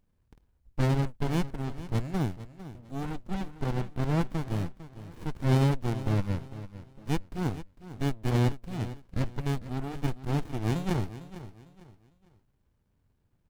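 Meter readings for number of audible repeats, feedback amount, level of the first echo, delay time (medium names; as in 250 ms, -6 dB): 3, 31%, -14.5 dB, 452 ms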